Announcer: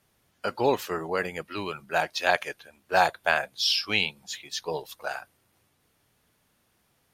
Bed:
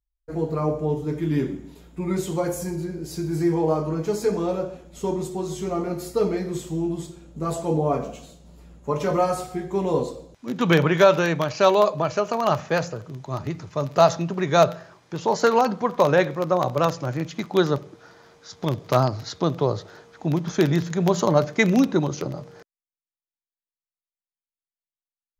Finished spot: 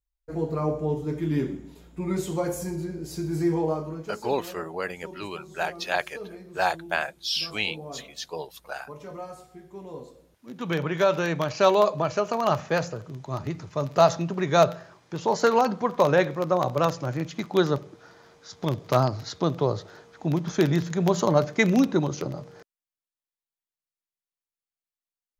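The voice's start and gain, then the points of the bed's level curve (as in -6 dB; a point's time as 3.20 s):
3.65 s, -3.0 dB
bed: 3.57 s -2.5 dB
4.39 s -17 dB
10.00 s -17 dB
11.49 s -2 dB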